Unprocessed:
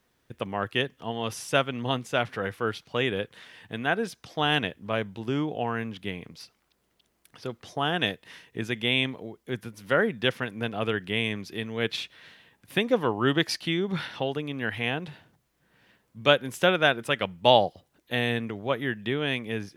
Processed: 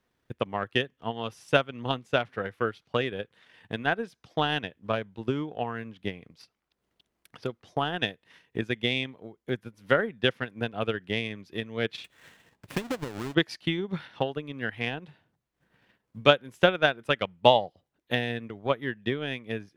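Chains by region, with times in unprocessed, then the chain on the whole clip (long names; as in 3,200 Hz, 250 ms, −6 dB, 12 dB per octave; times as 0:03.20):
0:12.04–0:13.35: each half-wave held at its own peak + parametric band 7,700 Hz +2.5 dB 0.24 octaves + downward compressor, threshold −28 dBFS
whole clip: high-shelf EQ 5,600 Hz −8 dB; transient designer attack +9 dB, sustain −6 dB; level −5 dB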